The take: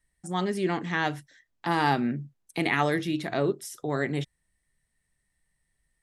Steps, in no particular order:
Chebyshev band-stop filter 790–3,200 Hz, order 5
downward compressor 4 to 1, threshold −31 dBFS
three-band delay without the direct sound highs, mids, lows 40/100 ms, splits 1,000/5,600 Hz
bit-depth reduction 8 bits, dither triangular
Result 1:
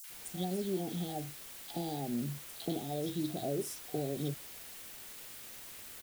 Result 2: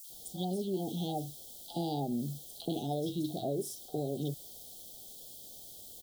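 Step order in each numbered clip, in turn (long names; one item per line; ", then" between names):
downward compressor, then Chebyshev band-stop filter, then bit-depth reduction, then three-band delay without the direct sound
bit-depth reduction, then Chebyshev band-stop filter, then downward compressor, then three-band delay without the direct sound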